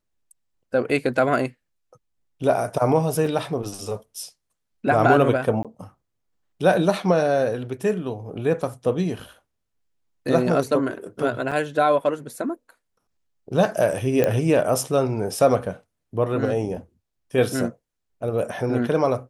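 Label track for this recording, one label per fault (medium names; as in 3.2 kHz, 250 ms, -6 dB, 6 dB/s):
3.260000	3.260000	dropout 4.1 ms
5.630000	5.650000	dropout 17 ms
11.510000	11.520000	dropout 6.2 ms
14.240000	14.240000	pop -8 dBFS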